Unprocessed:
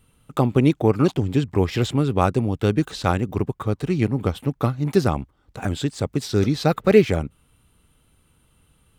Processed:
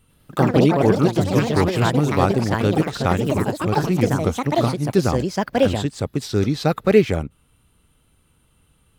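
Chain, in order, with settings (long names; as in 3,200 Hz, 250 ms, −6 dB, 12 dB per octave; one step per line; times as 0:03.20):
delay with pitch and tempo change per echo 96 ms, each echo +4 semitones, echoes 3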